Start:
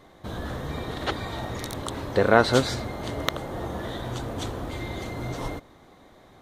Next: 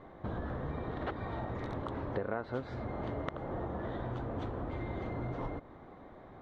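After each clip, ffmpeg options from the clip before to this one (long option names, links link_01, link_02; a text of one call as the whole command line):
ffmpeg -i in.wav -af "lowpass=1600,acompressor=threshold=-36dB:ratio=5,volume=1dB" out.wav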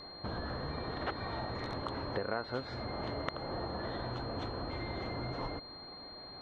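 ffmpeg -i in.wav -af "tiltshelf=frequency=790:gain=-3.5,aeval=exprs='val(0)+0.00355*sin(2*PI*4200*n/s)':channel_layout=same,volume=1dB" out.wav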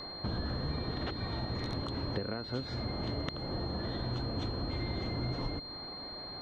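ffmpeg -i in.wav -filter_complex "[0:a]acrossover=split=340|3000[link_01][link_02][link_03];[link_02]acompressor=threshold=-54dB:ratio=2.5[link_04];[link_01][link_04][link_03]amix=inputs=3:normalize=0,volume=6dB" out.wav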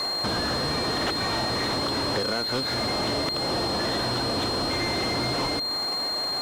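ffmpeg -i in.wav -filter_complex "[0:a]asplit=2[link_01][link_02];[link_02]highpass=frequency=720:poles=1,volume=29dB,asoftclip=type=tanh:threshold=-18dB[link_03];[link_01][link_03]amix=inputs=2:normalize=0,lowpass=frequency=3600:poles=1,volume=-6dB,volume=1dB" out.wav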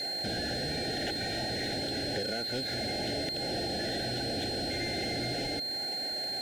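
ffmpeg -i in.wav -af "asuperstop=centerf=1100:order=20:qfactor=1.9,volume=-6.5dB" out.wav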